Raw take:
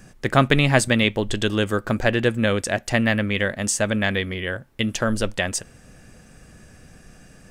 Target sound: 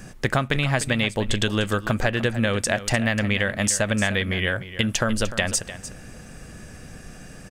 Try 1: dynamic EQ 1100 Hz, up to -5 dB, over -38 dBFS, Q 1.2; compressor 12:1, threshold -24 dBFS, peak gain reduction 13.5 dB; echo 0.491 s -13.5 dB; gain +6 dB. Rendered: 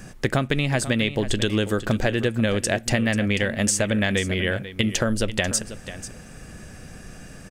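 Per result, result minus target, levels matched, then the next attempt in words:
echo 0.191 s late; 1000 Hz band -3.0 dB
dynamic EQ 1100 Hz, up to -5 dB, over -38 dBFS, Q 1.2; compressor 12:1, threshold -24 dBFS, peak gain reduction 13.5 dB; echo 0.3 s -13.5 dB; gain +6 dB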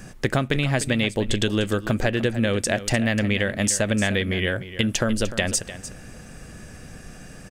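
1000 Hz band -3.0 dB
dynamic EQ 340 Hz, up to -5 dB, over -38 dBFS, Q 1.2; compressor 12:1, threshold -24 dBFS, peak gain reduction 13.5 dB; echo 0.3 s -13.5 dB; gain +6 dB

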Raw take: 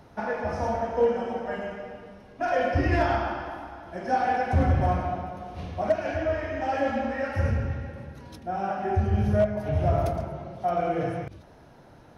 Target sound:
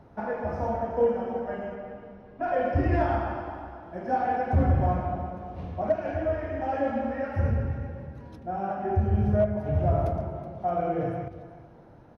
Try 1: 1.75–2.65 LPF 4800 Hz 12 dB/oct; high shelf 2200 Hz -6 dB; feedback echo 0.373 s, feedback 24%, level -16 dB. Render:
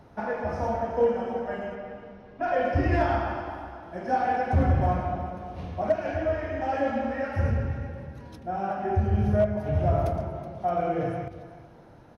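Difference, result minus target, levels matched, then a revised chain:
4000 Hz band +6.0 dB
1.75–2.65 LPF 4800 Hz 12 dB/oct; high shelf 2200 Hz -15.5 dB; feedback echo 0.373 s, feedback 24%, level -16 dB

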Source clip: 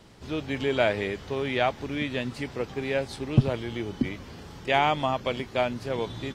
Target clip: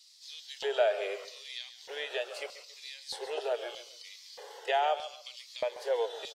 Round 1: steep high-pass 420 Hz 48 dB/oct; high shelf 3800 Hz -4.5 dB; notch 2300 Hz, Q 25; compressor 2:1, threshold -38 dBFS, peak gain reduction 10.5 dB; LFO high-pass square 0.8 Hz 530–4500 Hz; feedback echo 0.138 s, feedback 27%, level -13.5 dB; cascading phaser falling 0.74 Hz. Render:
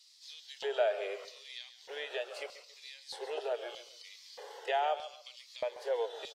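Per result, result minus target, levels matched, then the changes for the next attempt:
compressor: peak gain reduction +3 dB; 8000 Hz band -2.5 dB
change: compressor 2:1, threshold -32 dBFS, peak gain reduction 7.5 dB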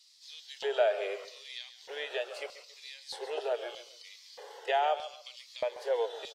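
8000 Hz band -3.5 dB
remove: high shelf 3800 Hz -4.5 dB

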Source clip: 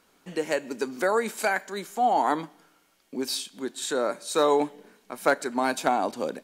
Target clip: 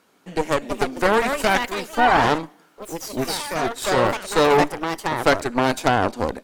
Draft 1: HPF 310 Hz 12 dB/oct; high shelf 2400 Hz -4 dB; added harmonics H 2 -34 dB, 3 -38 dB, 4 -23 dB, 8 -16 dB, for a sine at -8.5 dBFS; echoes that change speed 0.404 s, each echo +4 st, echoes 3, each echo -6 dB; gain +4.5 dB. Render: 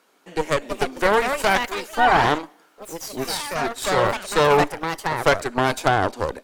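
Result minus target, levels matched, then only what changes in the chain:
250 Hz band -3.5 dB
change: HPF 98 Hz 12 dB/oct

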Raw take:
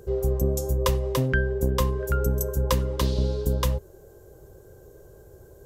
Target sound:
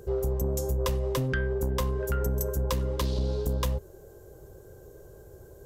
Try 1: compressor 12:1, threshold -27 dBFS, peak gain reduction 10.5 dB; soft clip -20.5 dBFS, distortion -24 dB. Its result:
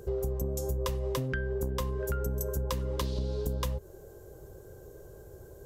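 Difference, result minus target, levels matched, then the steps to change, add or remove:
compressor: peak gain reduction +6 dB
change: compressor 12:1, threshold -20.5 dBFS, peak gain reduction 4.5 dB

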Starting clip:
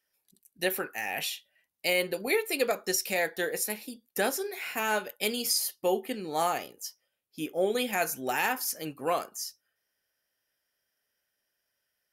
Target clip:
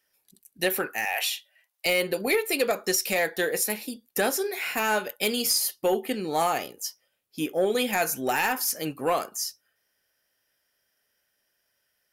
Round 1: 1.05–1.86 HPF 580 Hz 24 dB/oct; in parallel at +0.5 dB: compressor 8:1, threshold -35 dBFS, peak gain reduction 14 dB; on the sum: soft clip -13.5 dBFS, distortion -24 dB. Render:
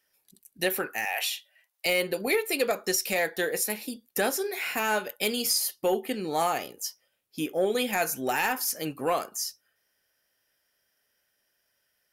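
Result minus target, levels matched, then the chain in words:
compressor: peak gain reduction +6.5 dB
1.05–1.86 HPF 580 Hz 24 dB/oct; in parallel at +0.5 dB: compressor 8:1, threshold -27.5 dBFS, peak gain reduction 7.5 dB; on the sum: soft clip -13.5 dBFS, distortion -21 dB

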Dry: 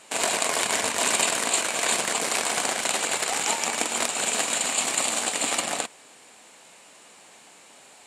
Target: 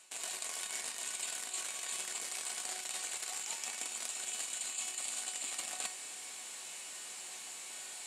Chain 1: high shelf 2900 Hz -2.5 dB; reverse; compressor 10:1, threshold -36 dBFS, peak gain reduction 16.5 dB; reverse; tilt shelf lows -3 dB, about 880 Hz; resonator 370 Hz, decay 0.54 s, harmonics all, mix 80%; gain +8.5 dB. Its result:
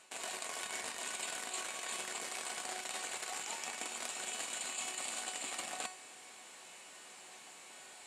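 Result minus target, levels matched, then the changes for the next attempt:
8000 Hz band -2.5 dB
change: high shelf 2900 Hz +9 dB

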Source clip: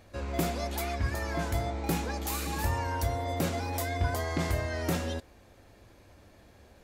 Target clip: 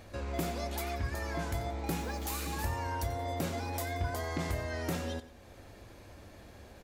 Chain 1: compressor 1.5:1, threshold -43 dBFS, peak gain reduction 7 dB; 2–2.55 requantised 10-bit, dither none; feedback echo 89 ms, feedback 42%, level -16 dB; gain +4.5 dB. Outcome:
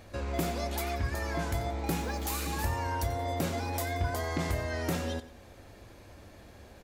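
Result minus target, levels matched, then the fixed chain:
compressor: peak gain reduction -3 dB
compressor 1.5:1, threshold -52 dBFS, peak gain reduction 10 dB; 2–2.55 requantised 10-bit, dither none; feedback echo 89 ms, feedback 42%, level -16 dB; gain +4.5 dB

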